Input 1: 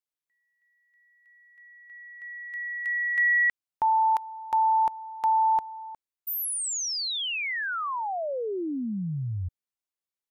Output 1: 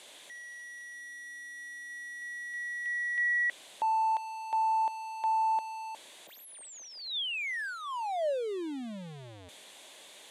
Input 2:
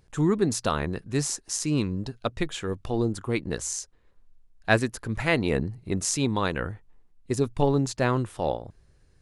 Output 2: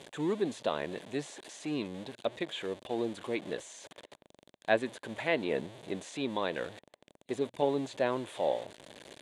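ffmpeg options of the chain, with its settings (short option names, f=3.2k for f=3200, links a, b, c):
-filter_complex "[0:a]aeval=exprs='val(0)+0.5*0.0251*sgn(val(0))':c=same,highpass=290,equalizer=f=600:t=q:w=4:g=6,equalizer=f=1.3k:t=q:w=4:g=-9,equalizer=f=3.5k:t=q:w=4:g=8,equalizer=f=5.3k:t=q:w=4:g=-8,lowpass=f=10k:w=0.5412,lowpass=f=10k:w=1.3066,acrossover=split=3300[a][b];[b]acompressor=threshold=-45dB:ratio=4:attack=1:release=60[c];[a][c]amix=inputs=2:normalize=0,volume=-6.5dB"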